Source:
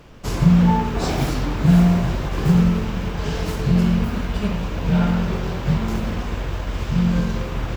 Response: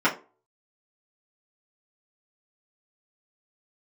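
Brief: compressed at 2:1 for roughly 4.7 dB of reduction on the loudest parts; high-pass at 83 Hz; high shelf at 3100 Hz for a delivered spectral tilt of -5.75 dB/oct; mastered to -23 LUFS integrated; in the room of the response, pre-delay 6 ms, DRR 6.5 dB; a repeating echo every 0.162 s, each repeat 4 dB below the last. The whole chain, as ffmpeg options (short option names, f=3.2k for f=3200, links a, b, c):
-filter_complex "[0:a]highpass=83,highshelf=f=3.1k:g=5.5,acompressor=threshold=-18dB:ratio=2,aecho=1:1:162|324|486|648|810|972|1134|1296|1458:0.631|0.398|0.25|0.158|0.0994|0.0626|0.0394|0.0249|0.0157,asplit=2[a][b];[1:a]atrim=start_sample=2205,adelay=6[c];[b][c]afir=irnorm=-1:irlink=0,volume=-23.5dB[d];[a][d]amix=inputs=2:normalize=0,volume=-1dB"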